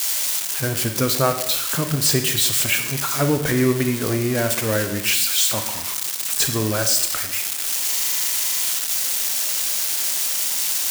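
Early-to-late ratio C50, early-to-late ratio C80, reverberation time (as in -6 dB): 8.5 dB, 10.5 dB, 0.85 s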